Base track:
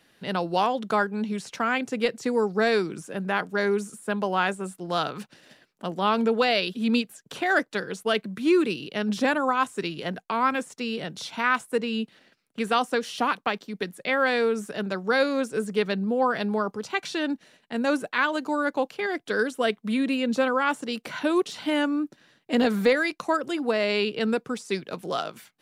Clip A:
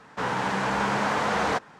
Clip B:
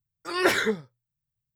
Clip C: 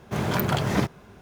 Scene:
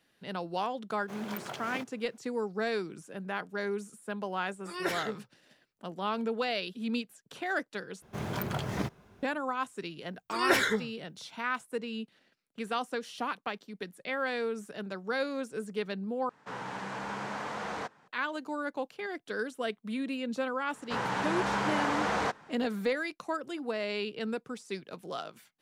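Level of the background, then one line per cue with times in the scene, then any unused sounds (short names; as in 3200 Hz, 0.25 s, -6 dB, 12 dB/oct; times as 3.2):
base track -9.5 dB
0.97 add C -13.5 dB + Bessel high-pass 360 Hz
4.4 add B -11 dB
8.02 replace with C -9.5 dB
10.05 add B -2.5 dB + bell 400 Hz -3 dB
16.29 replace with A -12 dB + HPF 82 Hz
20.73 add A -5 dB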